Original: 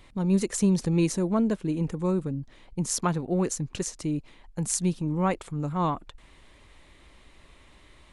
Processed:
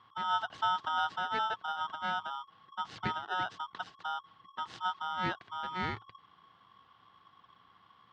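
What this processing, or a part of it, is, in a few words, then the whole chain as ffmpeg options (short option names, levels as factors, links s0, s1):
ring modulator pedal into a guitar cabinet: -af "aeval=exprs='val(0)*sgn(sin(2*PI*1100*n/s))':c=same,highpass=84,equalizer=f=110:t=q:w=4:g=10,equalizer=f=180:t=q:w=4:g=7,equalizer=f=330:t=q:w=4:g=3,equalizer=f=570:t=q:w=4:g=-8,equalizer=f=2400:t=q:w=4:g=-8,lowpass=f=3400:w=0.5412,lowpass=f=3400:w=1.3066,volume=0.422"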